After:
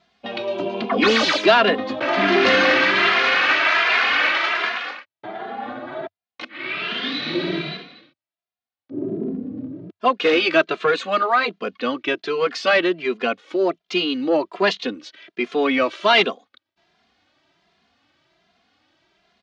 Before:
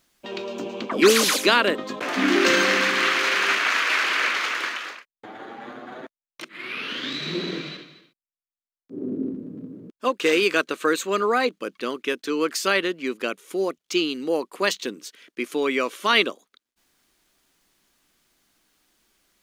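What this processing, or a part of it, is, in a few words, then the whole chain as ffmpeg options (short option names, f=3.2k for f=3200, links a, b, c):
barber-pole flanger into a guitar amplifier: -filter_complex "[0:a]asettb=1/sr,asplit=3[a][b][c];[a]atrim=end=15.904[d];[b]atrim=start=15.9:end=16.3,asetpts=PTS-STARTPTS,afade=t=in:d=0.004:c=qsin,afade=t=out:st=0.396:d=0.004:c=qsin,equalizer=f=7.6k:w=0.64:g=4.5[e];[c]atrim=start=16.296[f];[d][e]acrossfade=d=0.004:c1=hsin:c2=qsin[g];[g][f]acrossfade=d=0.004:c1=qsin:c2=hsin,asplit=2[h][i];[i]adelay=2.5,afreqshift=1.3[j];[h][j]amix=inputs=2:normalize=1,asoftclip=type=tanh:threshold=-16.5dB,highpass=79,equalizer=f=95:t=q:w=4:g=8,equalizer=f=460:t=q:w=4:g=-3,equalizer=f=690:t=q:w=4:g=9,lowpass=f=4.4k:w=0.5412,lowpass=f=4.4k:w=1.3066,volume=8dB"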